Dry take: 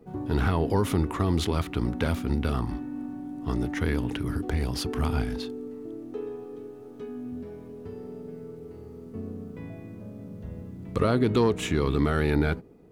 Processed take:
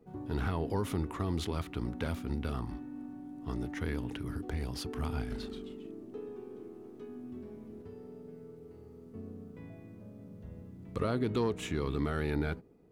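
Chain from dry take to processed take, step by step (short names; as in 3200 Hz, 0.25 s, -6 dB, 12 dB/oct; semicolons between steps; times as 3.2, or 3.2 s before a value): 5.2–7.82 echoes that change speed 0.106 s, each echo -2 st, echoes 3, each echo -6 dB; gain -8.5 dB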